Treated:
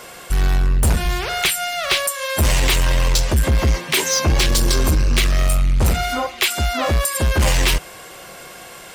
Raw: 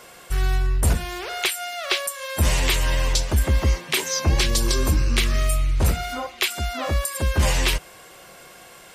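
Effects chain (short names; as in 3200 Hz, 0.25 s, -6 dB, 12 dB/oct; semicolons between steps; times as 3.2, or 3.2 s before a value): 1.05–2.05 resonant low shelf 230 Hz +11 dB, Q 1.5; in parallel at -3.5 dB: wavefolder -21.5 dBFS; on the sum: gain +3 dB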